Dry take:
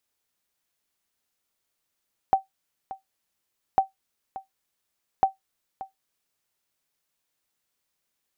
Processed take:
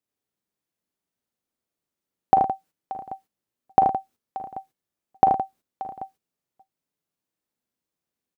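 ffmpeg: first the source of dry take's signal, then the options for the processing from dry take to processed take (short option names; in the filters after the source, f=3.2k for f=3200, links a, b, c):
-f lavfi -i "aevalsrc='0.316*(sin(2*PI*772*mod(t,1.45))*exp(-6.91*mod(t,1.45)/0.14)+0.15*sin(2*PI*772*max(mod(t,1.45)-0.58,0))*exp(-6.91*max(mod(t,1.45)-0.58,0)/0.14))':d=4.35:s=44100"
-af "aecho=1:1:40|52|80|112|167|785:0.316|0.299|0.501|0.266|0.282|0.119,agate=range=-12dB:threshold=-54dB:ratio=16:detection=peak,equalizer=f=220:w=0.36:g=13"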